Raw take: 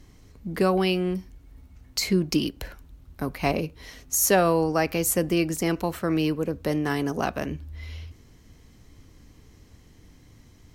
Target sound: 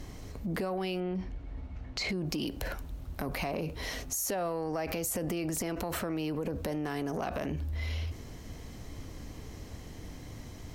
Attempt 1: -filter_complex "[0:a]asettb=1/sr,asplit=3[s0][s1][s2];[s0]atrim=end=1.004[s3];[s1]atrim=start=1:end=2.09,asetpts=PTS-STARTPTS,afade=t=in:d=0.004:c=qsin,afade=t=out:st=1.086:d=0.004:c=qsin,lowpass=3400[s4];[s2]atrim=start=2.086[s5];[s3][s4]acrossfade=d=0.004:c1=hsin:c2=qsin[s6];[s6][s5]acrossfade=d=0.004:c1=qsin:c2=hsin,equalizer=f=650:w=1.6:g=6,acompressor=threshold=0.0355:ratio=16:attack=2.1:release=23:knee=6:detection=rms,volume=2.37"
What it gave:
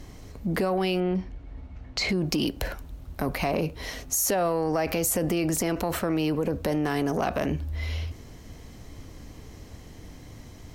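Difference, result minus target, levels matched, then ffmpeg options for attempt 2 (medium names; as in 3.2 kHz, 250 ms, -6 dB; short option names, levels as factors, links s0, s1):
compression: peak gain reduction -8 dB
-filter_complex "[0:a]asettb=1/sr,asplit=3[s0][s1][s2];[s0]atrim=end=1.004[s3];[s1]atrim=start=1:end=2.09,asetpts=PTS-STARTPTS,afade=t=in:d=0.004:c=qsin,afade=t=out:st=1.086:d=0.004:c=qsin,lowpass=3400[s4];[s2]atrim=start=2.086[s5];[s3][s4]acrossfade=d=0.004:c1=hsin:c2=qsin[s6];[s6][s5]acrossfade=d=0.004:c1=qsin:c2=hsin,equalizer=f=650:w=1.6:g=6,acompressor=threshold=0.0133:ratio=16:attack=2.1:release=23:knee=6:detection=rms,volume=2.37"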